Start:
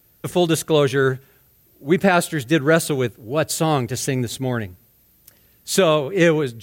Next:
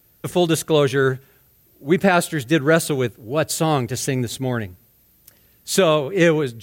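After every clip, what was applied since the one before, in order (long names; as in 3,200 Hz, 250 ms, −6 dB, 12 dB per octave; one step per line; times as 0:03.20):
no processing that can be heard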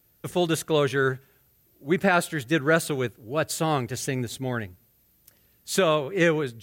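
dynamic equaliser 1,500 Hz, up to +4 dB, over −33 dBFS, Q 0.84
level −6.5 dB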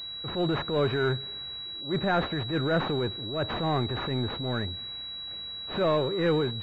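transient designer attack −10 dB, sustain +4 dB
power curve on the samples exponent 0.7
switching amplifier with a slow clock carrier 3,900 Hz
level −5 dB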